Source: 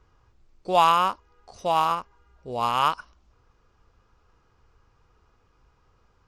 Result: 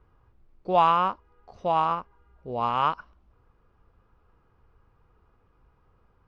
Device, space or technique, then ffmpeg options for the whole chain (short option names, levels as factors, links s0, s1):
phone in a pocket: -af "lowpass=3600,equalizer=f=180:t=o:w=0.77:g=2,highshelf=f=2200:g=-9"